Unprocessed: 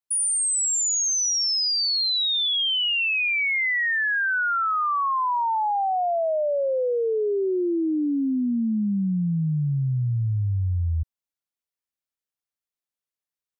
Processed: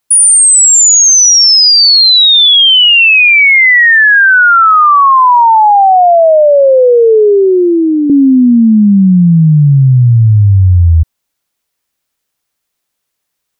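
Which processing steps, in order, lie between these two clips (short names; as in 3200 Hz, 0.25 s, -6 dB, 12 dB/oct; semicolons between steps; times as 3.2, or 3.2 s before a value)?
5.62–8.1 speaker cabinet 420–3500 Hz, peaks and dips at 650 Hz +5 dB, 1500 Hz +7 dB, 2400 Hz -6 dB; maximiser +21.5 dB; gain -1 dB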